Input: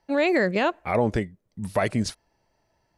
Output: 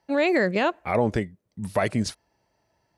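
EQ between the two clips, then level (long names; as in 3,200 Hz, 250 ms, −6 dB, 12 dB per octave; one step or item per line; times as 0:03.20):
high-pass filter 55 Hz
0.0 dB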